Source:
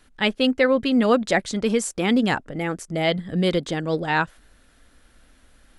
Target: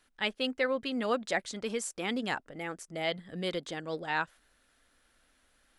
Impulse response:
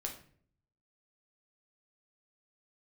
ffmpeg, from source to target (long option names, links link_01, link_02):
-af "lowshelf=frequency=310:gain=-11,volume=-8.5dB"